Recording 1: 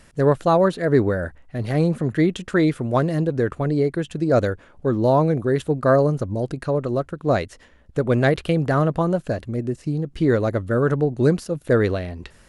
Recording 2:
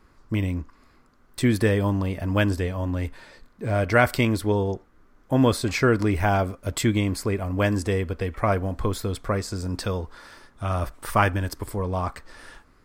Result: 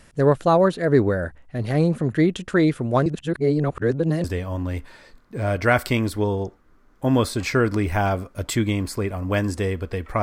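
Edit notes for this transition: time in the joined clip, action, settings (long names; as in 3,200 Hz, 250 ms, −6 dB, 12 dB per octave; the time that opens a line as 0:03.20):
recording 1
0:03.06–0:04.24: reverse
0:04.24: continue with recording 2 from 0:02.52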